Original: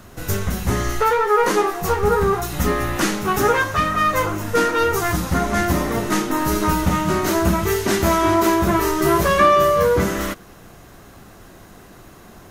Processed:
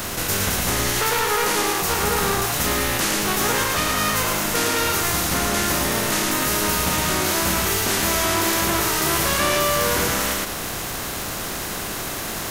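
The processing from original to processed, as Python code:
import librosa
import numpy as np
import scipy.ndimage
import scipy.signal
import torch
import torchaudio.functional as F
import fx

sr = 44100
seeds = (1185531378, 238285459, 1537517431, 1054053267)

y = fx.spec_flatten(x, sr, power=0.48)
y = y + 10.0 ** (-5.0 / 20.0) * np.pad(y, (int(111 * sr / 1000.0), 0))[:len(y)]
y = fx.env_flatten(y, sr, amount_pct=70)
y = F.gain(torch.from_numpy(y), -8.0).numpy()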